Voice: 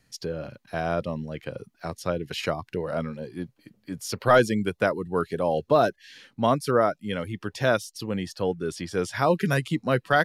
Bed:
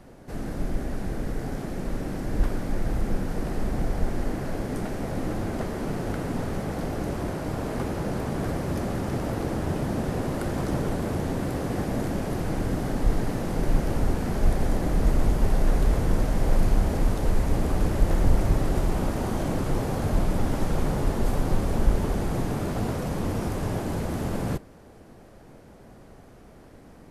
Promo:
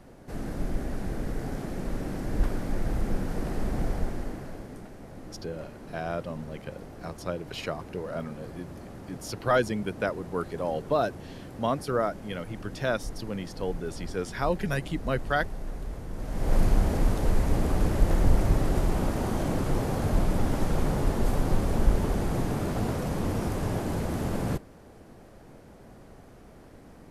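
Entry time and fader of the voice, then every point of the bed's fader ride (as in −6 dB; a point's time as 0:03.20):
5.20 s, −5.5 dB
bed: 0:03.90 −2 dB
0:04.90 −14.5 dB
0:16.12 −14.5 dB
0:16.56 −1 dB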